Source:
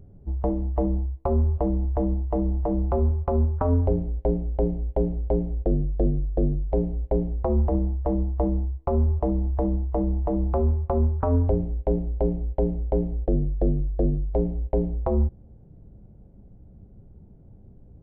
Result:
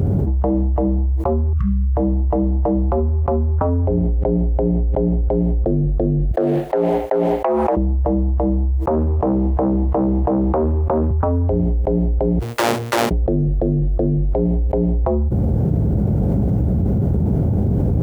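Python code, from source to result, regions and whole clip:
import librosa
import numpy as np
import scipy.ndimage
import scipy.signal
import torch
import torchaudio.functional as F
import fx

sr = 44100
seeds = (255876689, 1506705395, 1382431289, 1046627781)

y = fx.chain(x, sr, fx.over_compress(threshold_db=-28.0, ratio=-1.0),
    fx.brickwall_bandstop(low_hz=210.0, high_hz=1100.0), at=(1.53, 1.97))
y = fx.chain(y, sr, fx.air_absorb(metres=160.0),
    fx.env_flatten(amount_pct=50), at=(3.84, 5.21))
y = fx.chain(y, sr, fx.highpass(hz=810.0, slope=12),
    fx.transformer_sat(knee_hz=550.0), at=(6.31, 7.77))
y = fx.chain(y, sr, fx.highpass(hz=110.0, slope=12),
    fx.doppler_dist(depth_ms=0.54), at=(8.86, 11.11))
y = fx.chain(y, sr, fx.lower_of_two(delay_ms=8.4),
    fx.differentiator(), at=(12.39, 13.11))
y = scipy.signal.sosfilt(scipy.signal.butter(4, 61.0, 'highpass', fs=sr, output='sos'), y)
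y = fx.env_flatten(y, sr, amount_pct=100)
y = y * librosa.db_to_amplitude(1.5)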